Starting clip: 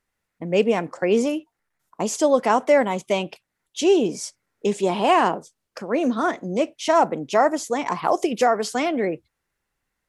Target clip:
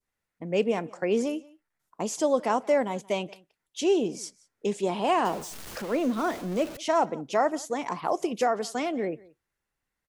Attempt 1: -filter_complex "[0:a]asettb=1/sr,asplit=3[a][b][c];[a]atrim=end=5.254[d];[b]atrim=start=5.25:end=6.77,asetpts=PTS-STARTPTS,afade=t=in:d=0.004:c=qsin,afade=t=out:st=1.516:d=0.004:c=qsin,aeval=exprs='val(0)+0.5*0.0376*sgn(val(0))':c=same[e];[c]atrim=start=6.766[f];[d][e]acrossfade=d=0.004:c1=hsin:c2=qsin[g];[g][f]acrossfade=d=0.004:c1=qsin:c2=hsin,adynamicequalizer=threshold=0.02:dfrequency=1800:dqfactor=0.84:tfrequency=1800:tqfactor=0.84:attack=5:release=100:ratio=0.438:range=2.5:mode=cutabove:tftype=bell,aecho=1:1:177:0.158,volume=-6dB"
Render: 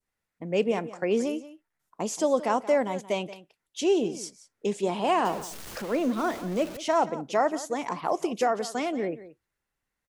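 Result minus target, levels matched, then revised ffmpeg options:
echo-to-direct +7.5 dB
-filter_complex "[0:a]asettb=1/sr,asplit=3[a][b][c];[a]atrim=end=5.254[d];[b]atrim=start=5.25:end=6.77,asetpts=PTS-STARTPTS,afade=t=in:d=0.004:c=qsin,afade=t=out:st=1.516:d=0.004:c=qsin,aeval=exprs='val(0)+0.5*0.0376*sgn(val(0))':c=same[e];[c]atrim=start=6.766[f];[d][e]acrossfade=d=0.004:c1=hsin:c2=qsin[g];[g][f]acrossfade=d=0.004:c1=qsin:c2=hsin,adynamicequalizer=threshold=0.02:dfrequency=1800:dqfactor=0.84:tfrequency=1800:tqfactor=0.84:attack=5:release=100:ratio=0.438:range=2.5:mode=cutabove:tftype=bell,aecho=1:1:177:0.0668,volume=-6dB"

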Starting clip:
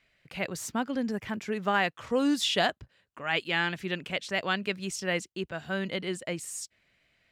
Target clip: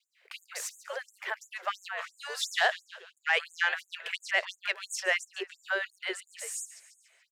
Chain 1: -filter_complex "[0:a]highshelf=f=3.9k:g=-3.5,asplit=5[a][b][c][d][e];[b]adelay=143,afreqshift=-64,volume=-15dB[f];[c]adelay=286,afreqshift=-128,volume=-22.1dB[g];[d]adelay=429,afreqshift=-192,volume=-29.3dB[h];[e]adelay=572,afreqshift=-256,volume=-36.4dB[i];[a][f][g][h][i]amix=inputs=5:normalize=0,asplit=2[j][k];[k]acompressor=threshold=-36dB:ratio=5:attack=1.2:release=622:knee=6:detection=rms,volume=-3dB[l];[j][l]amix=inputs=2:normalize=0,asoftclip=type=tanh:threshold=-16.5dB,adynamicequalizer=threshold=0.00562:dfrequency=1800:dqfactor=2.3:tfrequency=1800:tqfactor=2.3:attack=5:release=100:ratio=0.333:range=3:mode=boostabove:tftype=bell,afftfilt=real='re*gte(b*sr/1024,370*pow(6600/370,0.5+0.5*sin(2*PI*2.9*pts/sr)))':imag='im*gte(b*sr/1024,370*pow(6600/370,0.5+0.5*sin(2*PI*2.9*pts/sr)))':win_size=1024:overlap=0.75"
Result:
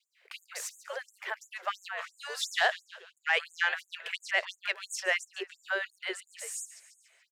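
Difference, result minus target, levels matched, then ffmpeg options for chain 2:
compressor: peak gain reduction +5.5 dB
-filter_complex "[0:a]highshelf=f=3.9k:g=-3.5,asplit=5[a][b][c][d][e];[b]adelay=143,afreqshift=-64,volume=-15dB[f];[c]adelay=286,afreqshift=-128,volume=-22.1dB[g];[d]adelay=429,afreqshift=-192,volume=-29.3dB[h];[e]adelay=572,afreqshift=-256,volume=-36.4dB[i];[a][f][g][h][i]amix=inputs=5:normalize=0,asplit=2[j][k];[k]acompressor=threshold=-29dB:ratio=5:attack=1.2:release=622:knee=6:detection=rms,volume=-3dB[l];[j][l]amix=inputs=2:normalize=0,asoftclip=type=tanh:threshold=-16.5dB,adynamicequalizer=threshold=0.00562:dfrequency=1800:dqfactor=2.3:tfrequency=1800:tqfactor=2.3:attack=5:release=100:ratio=0.333:range=3:mode=boostabove:tftype=bell,afftfilt=real='re*gte(b*sr/1024,370*pow(6600/370,0.5+0.5*sin(2*PI*2.9*pts/sr)))':imag='im*gte(b*sr/1024,370*pow(6600/370,0.5+0.5*sin(2*PI*2.9*pts/sr)))':win_size=1024:overlap=0.75"

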